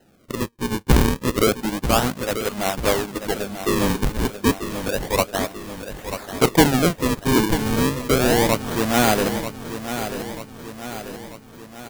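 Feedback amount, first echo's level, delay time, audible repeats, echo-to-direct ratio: 54%, −10.0 dB, 939 ms, 5, −8.5 dB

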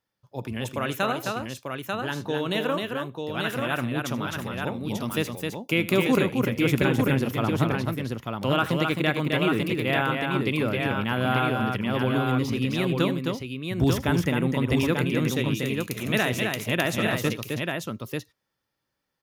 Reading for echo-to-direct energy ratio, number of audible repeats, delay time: −1.5 dB, 3, 80 ms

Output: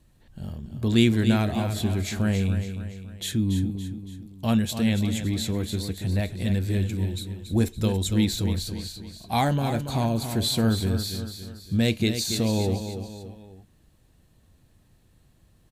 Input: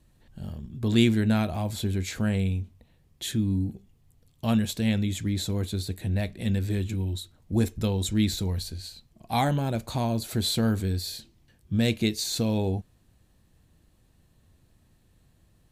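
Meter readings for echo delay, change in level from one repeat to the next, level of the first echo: 282 ms, −6.5 dB, −9.0 dB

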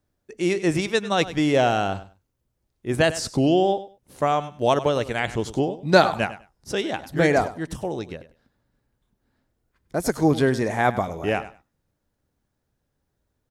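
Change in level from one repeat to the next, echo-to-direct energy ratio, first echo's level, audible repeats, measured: −15.5 dB, −15.0 dB, −15.0 dB, 2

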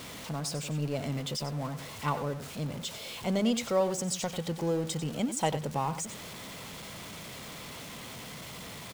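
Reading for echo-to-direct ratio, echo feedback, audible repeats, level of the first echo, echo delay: −11.5 dB, repeats not evenly spaced, 1, −11.5 dB, 94 ms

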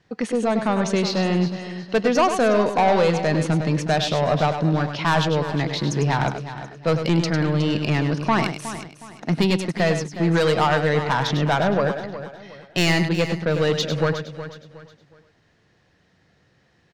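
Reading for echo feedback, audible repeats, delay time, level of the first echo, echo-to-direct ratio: repeats not evenly spaced, 6, 101 ms, −8.5 dB, −6.5 dB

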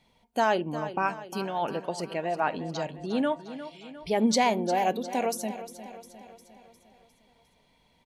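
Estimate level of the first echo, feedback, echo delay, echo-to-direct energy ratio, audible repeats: −13.0 dB, 54%, 354 ms, −11.5 dB, 5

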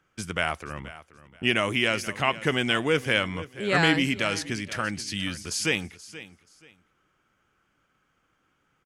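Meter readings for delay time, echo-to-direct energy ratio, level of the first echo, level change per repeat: 479 ms, −16.0 dB, −16.5 dB, −12.5 dB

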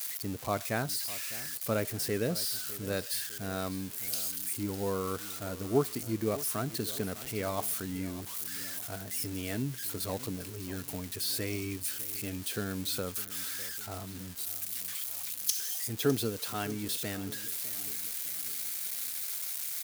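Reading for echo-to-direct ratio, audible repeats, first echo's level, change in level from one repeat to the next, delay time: −15.5 dB, 3, −16.5 dB, −6.5 dB, 605 ms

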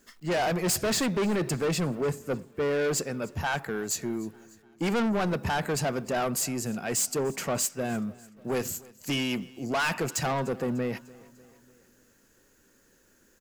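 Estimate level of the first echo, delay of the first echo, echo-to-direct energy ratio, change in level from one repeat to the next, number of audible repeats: −23.0 dB, 298 ms, −21.5 dB, −5.0 dB, 3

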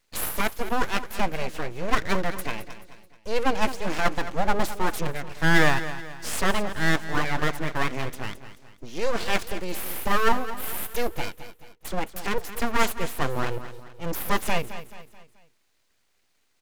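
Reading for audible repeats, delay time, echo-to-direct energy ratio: 4, 216 ms, −12.0 dB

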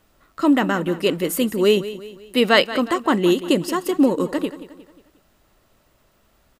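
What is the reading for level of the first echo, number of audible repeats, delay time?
−14.5 dB, 3, 179 ms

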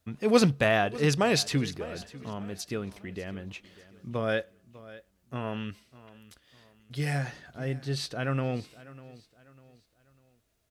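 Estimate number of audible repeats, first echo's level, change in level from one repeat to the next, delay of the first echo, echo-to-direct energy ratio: 2, −18.5 dB, −8.5 dB, 598 ms, −18.0 dB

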